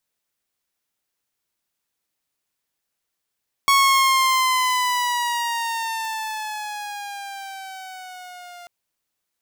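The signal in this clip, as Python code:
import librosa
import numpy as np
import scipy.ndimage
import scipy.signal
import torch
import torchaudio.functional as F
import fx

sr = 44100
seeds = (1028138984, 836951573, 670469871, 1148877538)

y = fx.riser_tone(sr, length_s=4.99, level_db=-10.0, wave='saw', hz=1110.0, rise_st=-8.0, swell_db=-26.0)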